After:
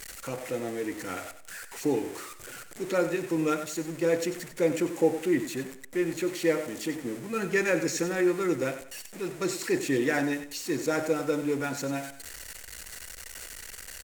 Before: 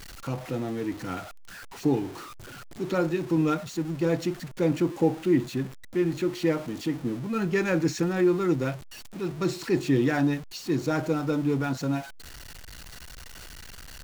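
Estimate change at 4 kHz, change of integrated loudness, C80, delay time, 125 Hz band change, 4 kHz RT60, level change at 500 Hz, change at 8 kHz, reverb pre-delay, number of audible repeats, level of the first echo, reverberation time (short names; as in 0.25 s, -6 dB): 0.0 dB, -2.0 dB, none, 94 ms, -9.5 dB, none, +0.5 dB, +6.5 dB, none, 3, -11.5 dB, none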